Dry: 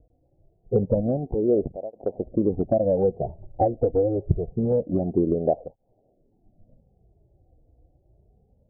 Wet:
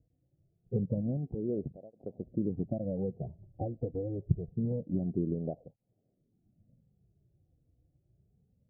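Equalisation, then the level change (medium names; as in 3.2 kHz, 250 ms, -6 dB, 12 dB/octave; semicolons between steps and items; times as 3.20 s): band-pass filter 150 Hz, Q 1.4; -3.5 dB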